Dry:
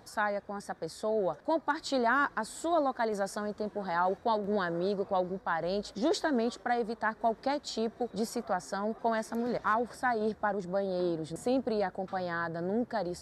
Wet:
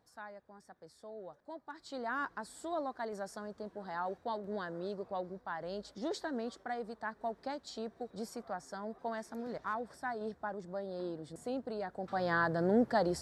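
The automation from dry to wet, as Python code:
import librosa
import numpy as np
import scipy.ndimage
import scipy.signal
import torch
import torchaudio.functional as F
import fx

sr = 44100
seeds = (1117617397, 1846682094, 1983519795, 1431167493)

y = fx.gain(x, sr, db=fx.line((1.66, -17.5), (2.19, -9.0), (11.82, -9.0), (12.32, 3.0)))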